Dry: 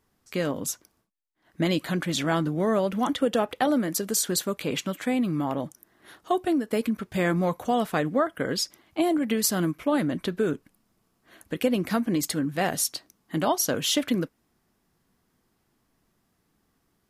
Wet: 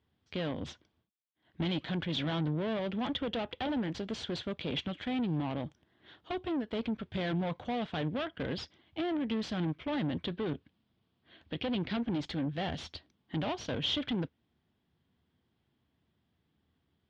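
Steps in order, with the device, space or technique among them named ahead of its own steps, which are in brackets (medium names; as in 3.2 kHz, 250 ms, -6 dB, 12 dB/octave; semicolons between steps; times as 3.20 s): guitar amplifier (valve stage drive 28 dB, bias 0.75; tone controls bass +7 dB, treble +6 dB; cabinet simulation 78–3700 Hz, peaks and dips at 78 Hz +7 dB, 190 Hz -3 dB, 1.2 kHz -4 dB, 3.3 kHz +8 dB); 10.27–11.97 s: resonant high shelf 6.5 kHz -11 dB, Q 1.5; trim -3.5 dB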